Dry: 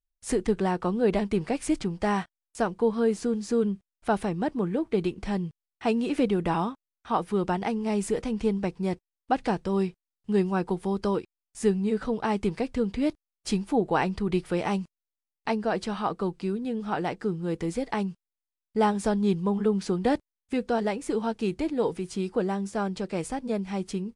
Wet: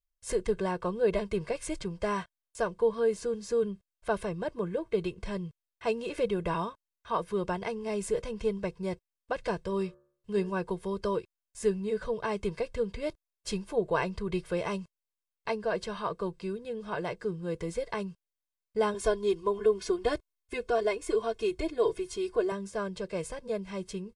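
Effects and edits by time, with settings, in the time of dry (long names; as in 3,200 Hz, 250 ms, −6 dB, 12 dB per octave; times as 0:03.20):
0:09.62–0:10.50: hum removal 71.9 Hz, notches 24
0:18.94–0:22.52: comb filter 2.8 ms, depth 92%
whole clip: comb filter 1.9 ms, depth 84%; level −5.5 dB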